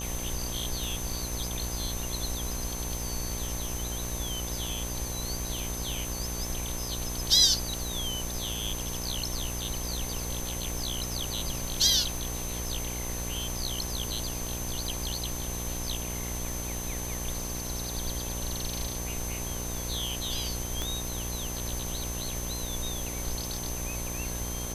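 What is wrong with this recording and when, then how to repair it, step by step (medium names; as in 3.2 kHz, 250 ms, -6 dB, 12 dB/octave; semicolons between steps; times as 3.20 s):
buzz 60 Hz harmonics 19 -37 dBFS
crackle 42 per s -41 dBFS
whine 6.2 kHz -38 dBFS
0.84 s: pop
20.82 s: pop -17 dBFS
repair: de-click; band-stop 6.2 kHz, Q 30; de-hum 60 Hz, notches 19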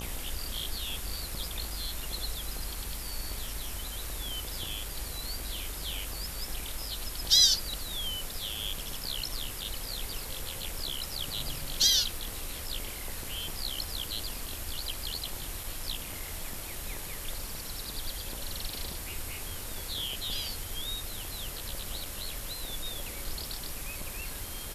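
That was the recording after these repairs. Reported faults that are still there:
nothing left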